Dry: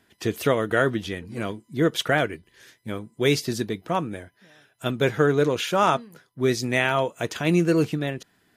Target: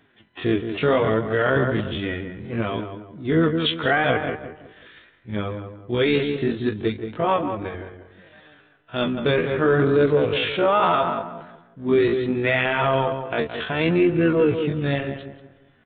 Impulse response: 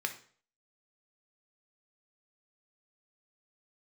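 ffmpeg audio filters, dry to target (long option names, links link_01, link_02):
-filter_complex "[0:a]asubboost=boost=4:cutoff=60,flanger=delay=6.3:depth=7.8:regen=11:speed=1.3:shape=triangular,asplit=2[link_01][link_02];[link_02]asetrate=33038,aresample=44100,atempo=1.33484,volume=-13dB[link_03];[link_01][link_03]amix=inputs=2:normalize=0,asplit=2[link_04][link_05];[link_05]adelay=96,lowpass=frequency=1700:poles=1,volume=-8dB,asplit=2[link_06][link_07];[link_07]adelay=96,lowpass=frequency=1700:poles=1,volume=0.36,asplit=2[link_08][link_09];[link_09]adelay=96,lowpass=frequency=1700:poles=1,volume=0.36,asplit=2[link_10][link_11];[link_11]adelay=96,lowpass=frequency=1700:poles=1,volume=0.36[link_12];[link_06][link_08][link_10][link_12]amix=inputs=4:normalize=0[link_13];[link_04][link_13]amix=inputs=2:normalize=0,alimiter=limit=-16.5dB:level=0:latency=1:release=19,acontrast=86,acrusher=bits=8:mode=log:mix=0:aa=0.000001,aresample=8000,aresample=44100,atempo=0.54"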